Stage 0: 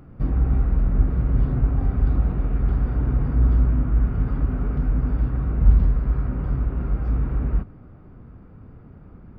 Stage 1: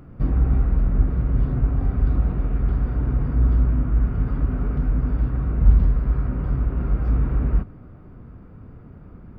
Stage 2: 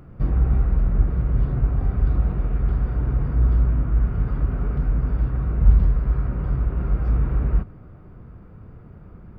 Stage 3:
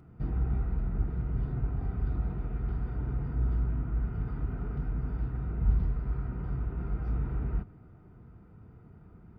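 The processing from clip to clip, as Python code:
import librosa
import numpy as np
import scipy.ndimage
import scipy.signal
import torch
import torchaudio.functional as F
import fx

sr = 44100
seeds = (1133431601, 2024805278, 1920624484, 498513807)

y1 = fx.rider(x, sr, range_db=10, speed_s=2.0)
y1 = fx.notch(y1, sr, hz=810.0, q=26.0)
y2 = fx.peak_eq(y1, sr, hz=260.0, db=-7.5, octaves=0.28)
y3 = fx.notch_comb(y2, sr, f0_hz=560.0)
y3 = y3 * 10.0 ** (-8.0 / 20.0)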